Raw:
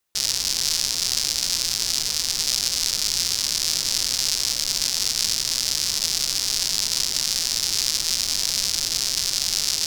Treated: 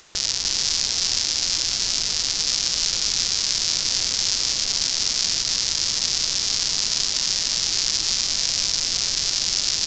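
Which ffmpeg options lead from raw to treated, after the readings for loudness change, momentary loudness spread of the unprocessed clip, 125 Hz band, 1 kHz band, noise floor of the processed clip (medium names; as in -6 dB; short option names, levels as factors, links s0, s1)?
+0.5 dB, 1 LU, +1.0 dB, +1.5 dB, -26 dBFS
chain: -af "acompressor=mode=upward:threshold=0.0562:ratio=2.5,aecho=1:1:303:0.596,aresample=16000,aresample=44100"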